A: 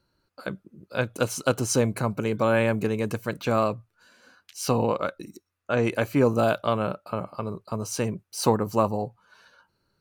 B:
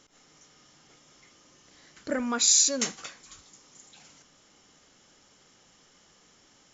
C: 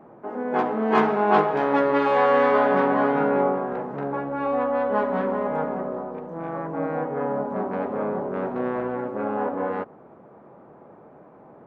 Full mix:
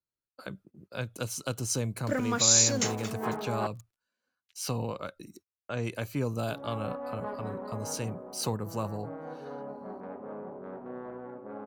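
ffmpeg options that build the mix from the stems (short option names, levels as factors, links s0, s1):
-filter_complex "[0:a]acrossover=split=160|3000[s0][s1][s2];[s1]acompressor=threshold=0.00631:ratio=1.5[s3];[s0][s3][s2]amix=inputs=3:normalize=0,volume=0.668[s4];[1:a]aeval=exprs='val(0)*gte(abs(val(0)),0.00708)':c=same,volume=0.891[s5];[2:a]adynamicsmooth=sensitivity=0.5:basefreq=2100,adelay=2300,volume=0.2,asplit=3[s6][s7][s8];[s6]atrim=end=3.67,asetpts=PTS-STARTPTS,afade=t=out:st=3.666:d=0.004:c=hsin[s9];[s7]atrim=start=3.67:end=6.48,asetpts=PTS-STARTPTS,volume=0[s10];[s8]atrim=start=6.48,asetpts=PTS-STARTPTS,afade=t=in:d=0.004:c=hsin[s11];[s9][s10][s11]concat=n=3:v=0:a=1[s12];[s4][s5][s12]amix=inputs=3:normalize=0,agate=range=0.0562:threshold=0.00224:ratio=16:detection=peak"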